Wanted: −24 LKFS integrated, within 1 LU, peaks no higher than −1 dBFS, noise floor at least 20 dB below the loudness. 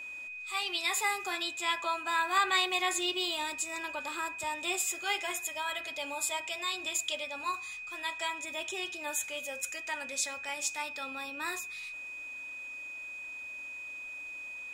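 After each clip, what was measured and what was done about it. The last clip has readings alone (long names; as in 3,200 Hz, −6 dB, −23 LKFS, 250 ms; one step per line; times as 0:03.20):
number of dropouts 2; longest dropout 1.2 ms; interfering tone 2,500 Hz; level of the tone −40 dBFS; integrated loudness −33.5 LKFS; sample peak −15.0 dBFS; target loudness −24.0 LKFS
→ repair the gap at 0:03.76/0:10.49, 1.2 ms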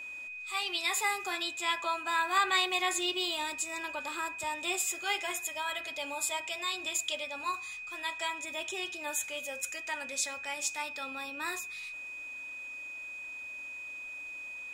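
number of dropouts 0; interfering tone 2,500 Hz; level of the tone −40 dBFS
→ notch filter 2,500 Hz, Q 30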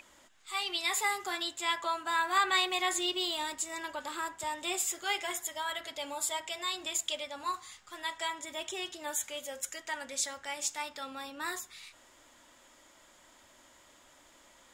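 interfering tone none found; integrated loudness −33.5 LKFS; sample peak −15.0 dBFS; target loudness −24.0 LKFS
→ level +9.5 dB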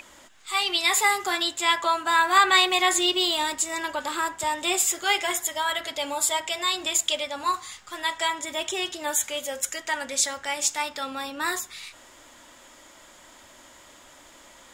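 integrated loudness −24.0 LKFS; sample peak −5.5 dBFS; background noise floor −51 dBFS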